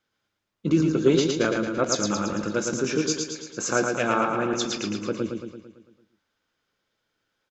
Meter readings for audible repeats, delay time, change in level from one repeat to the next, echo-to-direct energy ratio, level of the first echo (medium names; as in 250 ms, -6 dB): 7, 112 ms, -5.0 dB, -2.5 dB, -4.0 dB